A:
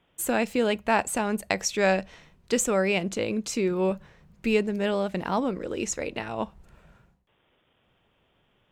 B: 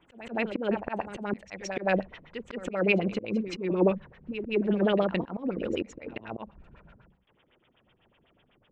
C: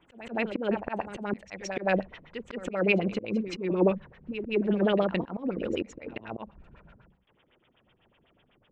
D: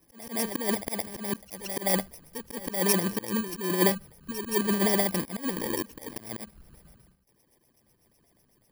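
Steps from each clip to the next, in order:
LFO low-pass sine 8 Hz 230–3300 Hz; reverse echo 0.171 s -15 dB; auto swell 0.22 s
nothing audible
FFT order left unsorted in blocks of 32 samples

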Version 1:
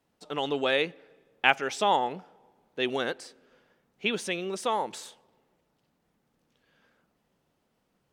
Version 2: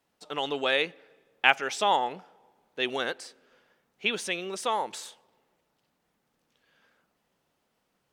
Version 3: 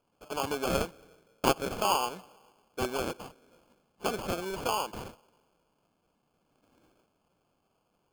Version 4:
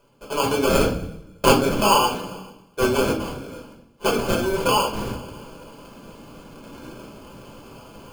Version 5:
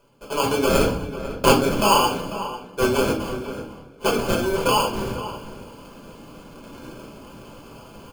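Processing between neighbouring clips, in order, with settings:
low shelf 460 Hz -8 dB; gain +2 dB
in parallel at -1 dB: compressor, threshold -34 dBFS, peak gain reduction 18.5 dB; on the sum: sample-and-hold 23×; gain -4.5 dB
reverse; upward compressor, threshold -37 dBFS; reverse; reverb RT60 0.55 s, pre-delay 3 ms, DRR -2 dB; gain +5.5 dB
outdoor echo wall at 85 m, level -12 dB

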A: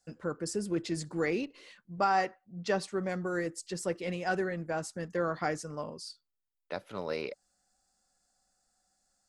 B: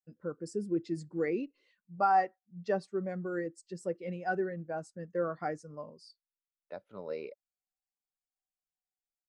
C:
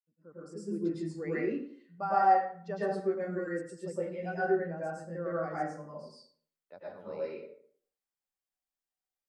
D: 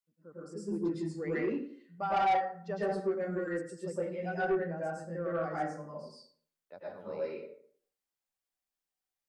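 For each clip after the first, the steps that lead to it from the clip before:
spectral expander 1.5:1
opening faded in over 0.78 s; tape echo 90 ms, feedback 23%, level -14 dB, low-pass 5500 Hz; plate-style reverb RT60 0.53 s, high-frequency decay 0.55×, pre-delay 95 ms, DRR -8.5 dB; gain -8 dB
soft clip -24 dBFS, distortion -12 dB; gain +1 dB

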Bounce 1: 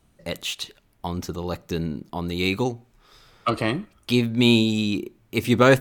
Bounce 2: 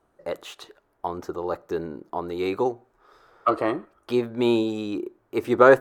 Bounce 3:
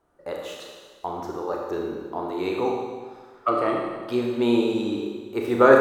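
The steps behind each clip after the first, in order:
band shelf 720 Hz +15.5 dB 2.8 oct; gain -12.5 dB
Schroeder reverb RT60 1.5 s, combs from 26 ms, DRR -1 dB; gain -2.5 dB

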